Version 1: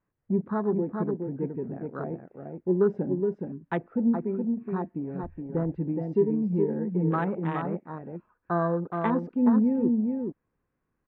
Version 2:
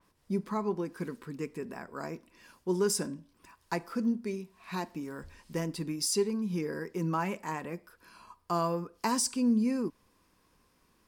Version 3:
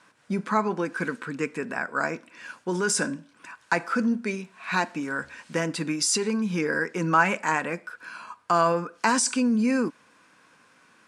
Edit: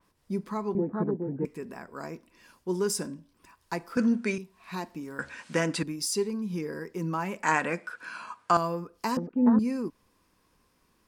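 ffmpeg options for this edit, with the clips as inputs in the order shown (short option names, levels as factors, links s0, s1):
-filter_complex "[0:a]asplit=2[s0][s1];[2:a]asplit=3[s2][s3][s4];[1:a]asplit=6[s5][s6][s7][s8][s9][s10];[s5]atrim=end=0.752[s11];[s0]atrim=start=0.748:end=1.452[s12];[s6]atrim=start=1.448:end=3.972[s13];[s2]atrim=start=3.968:end=4.382[s14];[s7]atrim=start=4.378:end=5.192[s15];[s3]atrim=start=5.188:end=5.832[s16];[s8]atrim=start=5.828:end=7.432[s17];[s4]atrim=start=7.428:end=8.572[s18];[s9]atrim=start=8.568:end=9.172[s19];[s1]atrim=start=9.168:end=9.592[s20];[s10]atrim=start=9.588[s21];[s11][s12]acrossfade=d=0.004:c1=hsin:c2=hsin[s22];[s22][s13]acrossfade=d=0.004:c1=hsin:c2=hsin[s23];[s23][s14]acrossfade=d=0.004:c1=hsin:c2=hsin[s24];[s24][s15]acrossfade=d=0.004:c1=hsin:c2=hsin[s25];[s25][s16]acrossfade=d=0.004:c1=hsin:c2=hsin[s26];[s26][s17]acrossfade=d=0.004:c1=hsin:c2=hsin[s27];[s27][s18]acrossfade=d=0.004:c1=hsin:c2=hsin[s28];[s28][s19]acrossfade=d=0.004:c1=hsin:c2=hsin[s29];[s29][s20]acrossfade=d=0.004:c1=hsin:c2=hsin[s30];[s30][s21]acrossfade=d=0.004:c1=hsin:c2=hsin"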